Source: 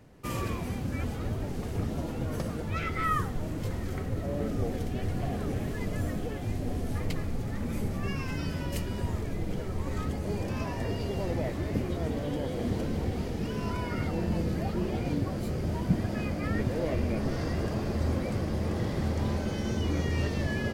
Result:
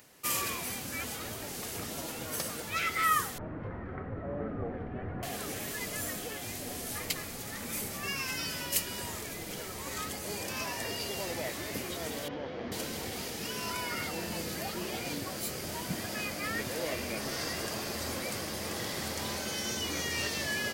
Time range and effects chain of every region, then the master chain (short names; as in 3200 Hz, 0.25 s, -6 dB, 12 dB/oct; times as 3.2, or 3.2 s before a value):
3.38–5.23 LPF 1600 Hz 24 dB/oct + low shelf 210 Hz +8.5 dB
12.28–12.72 CVSD 32 kbps + LPF 1700 Hz
whole clip: tilt +4.5 dB/oct; upward compressor, threshold -57 dBFS